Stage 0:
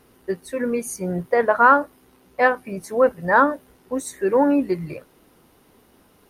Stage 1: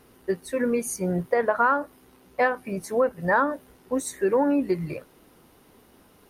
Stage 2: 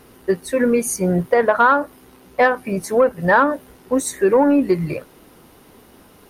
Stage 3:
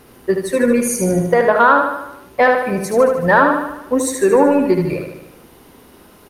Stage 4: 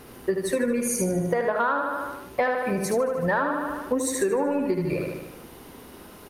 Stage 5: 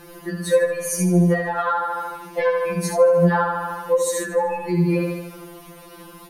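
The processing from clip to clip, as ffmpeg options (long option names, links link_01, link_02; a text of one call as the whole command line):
ffmpeg -i in.wav -af "acompressor=threshold=-18dB:ratio=6" out.wav
ffmpeg -i in.wav -af "asoftclip=type=tanh:threshold=-11dB,volume=8dB" out.wav
ffmpeg -i in.wav -af "aecho=1:1:75|150|225|300|375|450|525:0.531|0.297|0.166|0.0932|0.0522|0.0292|0.0164,volume=1.5dB" out.wav
ffmpeg -i in.wav -af "acompressor=threshold=-22dB:ratio=6" out.wav
ffmpeg -i in.wav -af "afftfilt=real='re*2.83*eq(mod(b,8),0)':imag='im*2.83*eq(mod(b,8),0)':win_size=2048:overlap=0.75,volume=5.5dB" out.wav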